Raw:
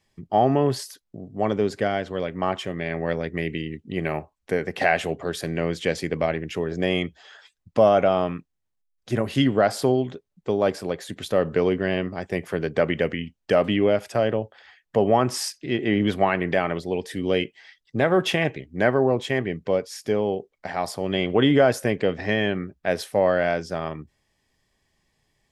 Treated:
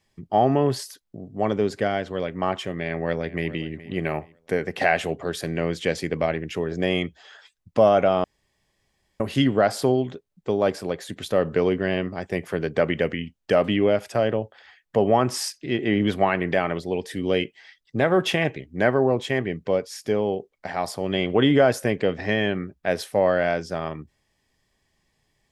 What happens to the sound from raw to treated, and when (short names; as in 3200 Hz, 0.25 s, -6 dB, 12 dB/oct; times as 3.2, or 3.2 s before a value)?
2.8–3.52 echo throw 0.42 s, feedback 30%, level -17 dB
8.24–9.2 room tone